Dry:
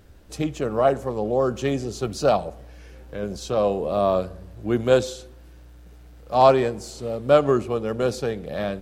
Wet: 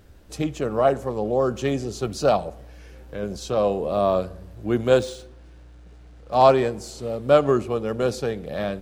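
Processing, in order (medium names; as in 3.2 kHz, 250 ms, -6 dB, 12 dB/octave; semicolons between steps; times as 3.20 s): 4.98–6.33 s: decimation joined by straight lines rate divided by 3×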